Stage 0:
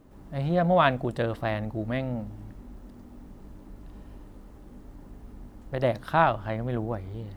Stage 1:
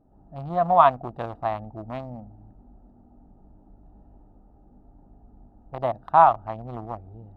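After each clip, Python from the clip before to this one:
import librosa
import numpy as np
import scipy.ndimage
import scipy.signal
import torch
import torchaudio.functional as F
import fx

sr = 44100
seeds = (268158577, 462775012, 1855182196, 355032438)

y = fx.wiener(x, sr, points=41)
y = fx.band_shelf(y, sr, hz=920.0, db=15.5, octaves=1.1)
y = y * librosa.db_to_amplitude(-6.5)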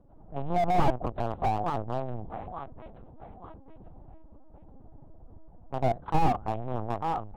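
y = fx.echo_feedback(x, sr, ms=881, feedback_pct=31, wet_db=-18)
y = fx.lpc_vocoder(y, sr, seeds[0], excitation='pitch_kept', order=8)
y = fx.slew_limit(y, sr, full_power_hz=33.0)
y = y * librosa.db_to_amplitude(3.5)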